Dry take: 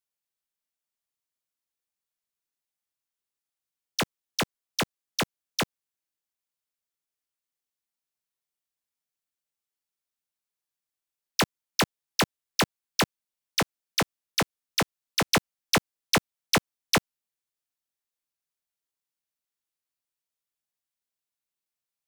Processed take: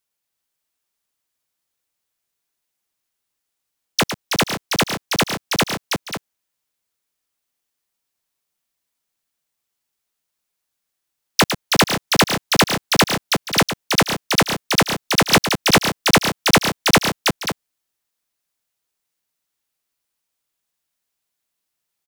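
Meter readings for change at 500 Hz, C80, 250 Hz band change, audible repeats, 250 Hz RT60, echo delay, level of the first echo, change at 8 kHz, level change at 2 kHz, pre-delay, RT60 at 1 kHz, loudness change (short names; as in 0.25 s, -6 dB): +11.0 dB, none, +11.0 dB, 4, none, 0.107 s, -9.5 dB, +11.0 dB, +11.0 dB, none, none, +10.5 dB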